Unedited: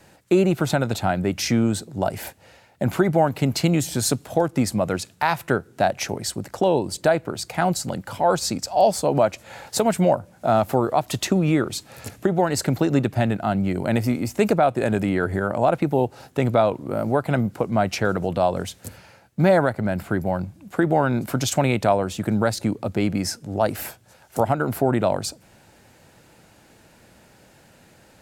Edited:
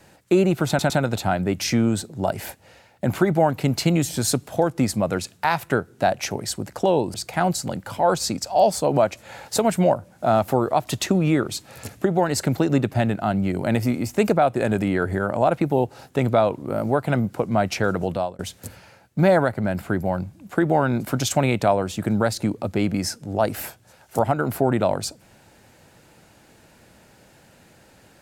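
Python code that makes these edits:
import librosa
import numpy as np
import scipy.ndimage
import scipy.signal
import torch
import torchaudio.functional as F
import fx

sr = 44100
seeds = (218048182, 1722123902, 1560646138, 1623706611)

y = fx.edit(x, sr, fx.stutter(start_s=0.68, slice_s=0.11, count=3),
    fx.cut(start_s=6.92, length_s=0.43),
    fx.fade_out_span(start_s=18.3, length_s=0.3), tone=tone)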